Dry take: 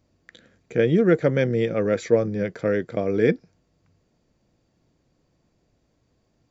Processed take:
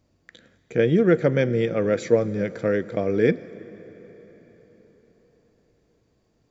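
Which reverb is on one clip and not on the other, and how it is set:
dense smooth reverb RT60 4.8 s, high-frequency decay 0.8×, DRR 16.5 dB

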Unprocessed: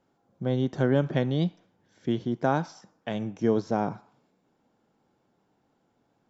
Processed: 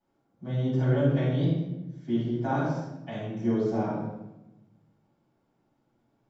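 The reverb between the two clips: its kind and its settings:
rectangular room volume 410 cubic metres, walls mixed, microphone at 7.9 metres
level −19 dB

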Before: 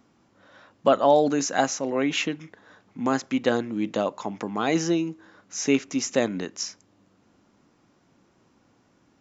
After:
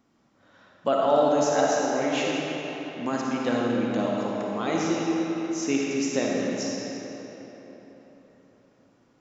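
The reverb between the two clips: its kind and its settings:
comb and all-pass reverb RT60 4 s, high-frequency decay 0.7×, pre-delay 15 ms, DRR −3.5 dB
level −6 dB

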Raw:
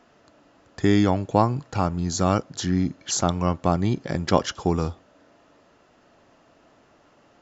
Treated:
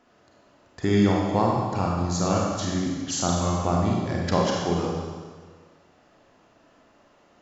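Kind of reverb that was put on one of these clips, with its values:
four-comb reverb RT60 1.6 s, combs from 31 ms, DRR −2.5 dB
level −5 dB

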